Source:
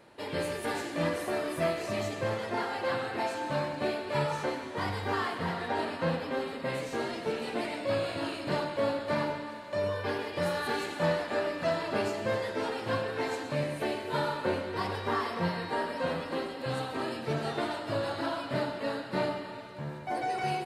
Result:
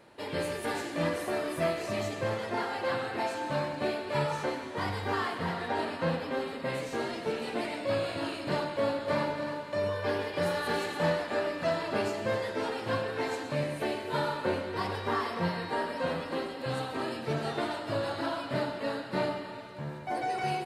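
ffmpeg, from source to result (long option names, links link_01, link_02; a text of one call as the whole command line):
ffmpeg -i in.wav -filter_complex "[0:a]asettb=1/sr,asplit=3[link_01][link_02][link_03];[link_01]atrim=end=8.734[link_04];[link_02]atrim=start=8.73:end=11.1,asetpts=PTS-STARTPTS,afade=type=in:duration=0.004:curve=qsin,afade=type=out:start_time=2.366:duration=0.004:curve=qsin,aecho=1:1:296:0.398,atrim=end_sample=104517[link_05];[link_03]atrim=start=11.096[link_06];[link_04][link_05]acrossfade=duration=0.004:curve1=hsin:curve2=qsin[link_07];[link_07][link_06]acrossfade=duration=0.004:curve1=qsin:curve2=hsin" out.wav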